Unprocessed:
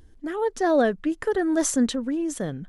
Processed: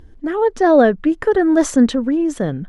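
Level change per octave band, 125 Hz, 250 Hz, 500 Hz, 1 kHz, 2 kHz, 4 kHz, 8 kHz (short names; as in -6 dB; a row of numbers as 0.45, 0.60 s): n/a, +9.0 dB, +9.0 dB, +8.5 dB, +7.0 dB, +3.0 dB, -1.0 dB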